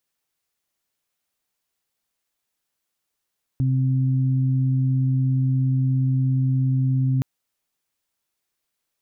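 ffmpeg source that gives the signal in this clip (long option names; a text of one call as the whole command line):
ffmpeg -f lavfi -i "aevalsrc='0.133*sin(2*PI*131*t)+0.0422*sin(2*PI*262*t)':duration=3.62:sample_rate=44100" out.wav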